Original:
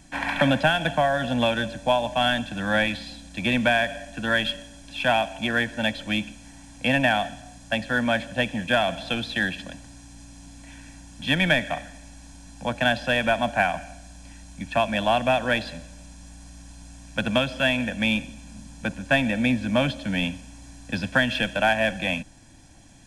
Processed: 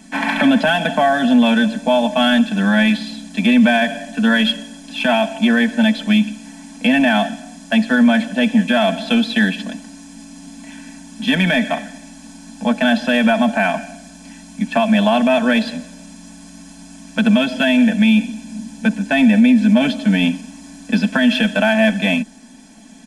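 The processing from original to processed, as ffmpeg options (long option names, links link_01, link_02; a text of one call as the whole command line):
ffmpeg -i in.wav -filter_complex "[0:a]asettb=1/sr,asplit=3[link_01][link_02][link_03];[link_01]atrim=end=17.374[link_04];[link_02]atrim=start=17.37:end=19.94,asetpts=PTS-STARTPTS,afade=type=in:duration=0.004:curve=qsin,afade=type=out:start_time=2.566:duration=0.004:curve=qsin,asuperstop=centerf=1200:order=4:qfactor=5[link_05];[link_03]atrim=start=19.936[link_06];[link_04][link_05]acrossfade=duration=0.004:curve1=hsin:curve2=qsin[link_07];[link_07][link_06]acrossfade=duration=0.004:curve1=qsin:curve2=hsin,lowshelf=frequency=150:width_type=q:width=3:gain=-13,aecho=1:1:4.6:0.73,alimiter=limit=-11dB:level=0:latency=1:release=33,volume=5.5dB" out.wav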